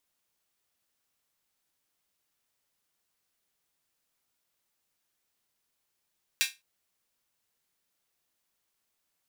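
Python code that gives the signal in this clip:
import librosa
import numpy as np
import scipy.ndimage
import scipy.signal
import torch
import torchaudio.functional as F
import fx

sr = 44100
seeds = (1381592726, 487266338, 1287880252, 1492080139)

y = fx.drum_hat_open(sr, length_s=0.21, from_hz=2300.0, decay_s=0.22)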